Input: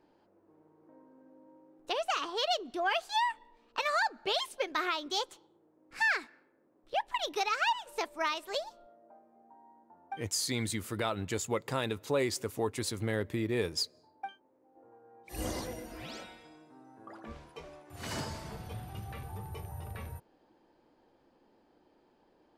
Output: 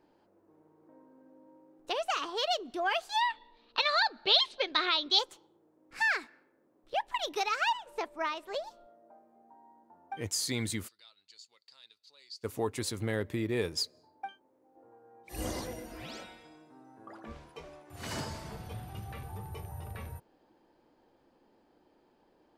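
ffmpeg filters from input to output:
-filter_complex "[0:a]asettb=1/sr,asplit=3[a][b][c];[a]atrim=end=3.214[d];[b]atrim=start=3.21:end=5.19,asetpts=PTS-STARTPTS,afade=t=in:d=0.004:c=qsin,afade=t=out:st=1.976:d=0.004:c=qsin,lowpass=f=4k:t=q:w=4.5[e];[c]atrim=start=5.186[f];[d][e]acrossfade=d=0.004:c1=hsin:c2=qsin[g];[g][f]acrossfade=d=0.004:c1=qsin:c2=hsin,asettb=1/sr,asplit=3[h][i][j];[h]atrim=end=7.774[k];[i]atrim=start=7.77:end=8.64,asetpts=PTS-STARTPTS,afade=t=in:d=0.004:c=qsin,afade=t=out:st=0.866:d=0.004:c=qsin,highshelf=f=3.5k:g=-11[l];[j]atrim=start=8.636[m];[k][l]acrossfade=d=0.004:c1=hsin:c2=qsin[n];[n][m]acrossfade=d=0.004:c1=qsin:c2=hsin,asplit=3[o][p][q];[o]afade=t=out:st=10.87:d=0.02[r];[p]bandpass=f=4.5k:t=q:w=11,afade=t=in:st=10.87:d=0.02,afade=t=out:st=12.43:d=0.02[s];[q]afade=t=in:st=12.43:d=0.02[t];[r][s][t]amix=inputs=3:normalize=0"

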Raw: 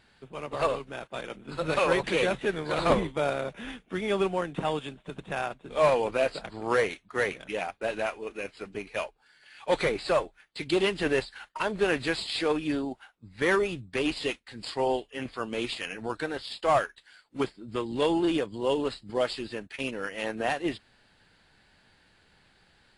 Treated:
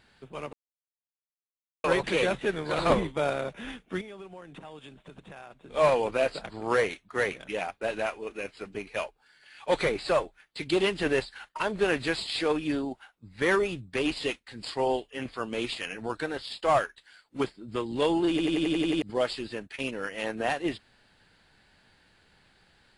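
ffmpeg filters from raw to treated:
-filter_complex "[0:a]asettb=1/sr,asplit=3[a][b][c];[a]atrim=end=4.014[d];[b]atrim=start=4.01:end=5.74,asetpts=PTS-STARTPTS,afade=t=in:d=0.004:c=qsin,afade=t=out:st=1.726:d=0.004:c=qsin,acompressor=threshold=-44dB:ratio=4:attack=3.2:release=140:knee=1:detection=peak[e];[c]atrim=start=5.736[f];[d][e]acrossfade=d=0.004:c1=hsin:c2=qsin[g];[g][f]acrossfade=d=0.004:c1=qsin:c2=hsin,asplit=11[h][i][j][k][l][m][n][o][p][q][r];[h]atrim=end=0.53,asetpts=PTS-STARTPTS,afade=t=out:st=0.526:d=0.004:c=hsin[s];[i]atrim=start=0.53:end=1.84,asetpts=PTS-STARTPTS,volume=0[t];[j]atrim=start=1.84:end=18.392,asetpts=PTS-STARTPTS,afade=t=in:d=0.004:c=hsin[u];[k]atrim=start=18.298:end=18.392[v];[l]atrim=start=18.298:end=18.392[w];[m]atrim=start=18.298:end=18.392[x];[n]atrim=start=18.298:end=18.392[y];[o]atrim=start=18.298:end=18.392[z];[p]atrim=start=18.298:end=18.392[aa];[q]atrim=start=18.298:end=18.392[ab];[r]atrim=start=19.018[ac];[s][t][u]concat=n=3:v=0:a=1[ad];[ad][v]acrossfade=d=0.004:c1=hsin:c2=hsin[ae];[ae][w]acrossfade=d=0.004:c1=hsin:c2=hsin[af];[af][x]acrossfade=d=0.004:c1=hsin:c2=hsin[ag];[ag][y]acrossfade=d=0.004:c1=hsin:c2=hsin[ah];[ah][z]acrossfade=d=0.004:c1=hsin:c2=hsin[ai];[ai][aa]acrossfade=d=0.004:c1=hsin:c2=hsin[aj];[aj][ab]acrossfade=d=0.004:c1=hsin:c2=hsin[ak];[ak][ac]acrossfade=d=0.004:c1=hsin:c2=hsin"

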